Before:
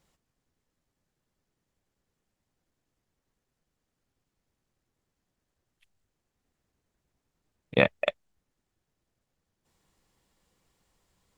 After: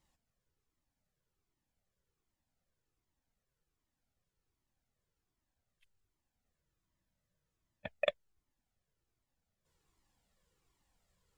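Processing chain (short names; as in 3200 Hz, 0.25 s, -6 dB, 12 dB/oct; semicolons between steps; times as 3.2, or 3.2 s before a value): spectral freeze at 6.65, 1.22 s; cascading flanger falling 1.3 Hz; gain -2 dB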